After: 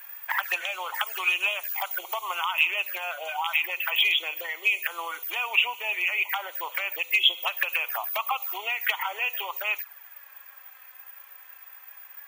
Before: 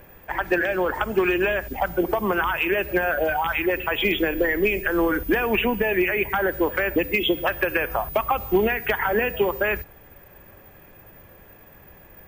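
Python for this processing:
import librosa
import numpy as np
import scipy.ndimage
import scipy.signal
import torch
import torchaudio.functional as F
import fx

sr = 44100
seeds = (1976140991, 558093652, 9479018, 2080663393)

y = fx.high_shelf(x, sr, hz=4600.0, db=fx.steps((0.0, 10.0), (2.44, 4.5)))
y = fx.env_flanger(y, sr, rest_ms=4.7, full_db=-20.0)
y = scipy.signal.sosfilt(scipy.signal.butter(4, 1000.0, 'highpass', fs=sr, output='sos'), y)
y = y * librosa.db_to_amplitude(4.5)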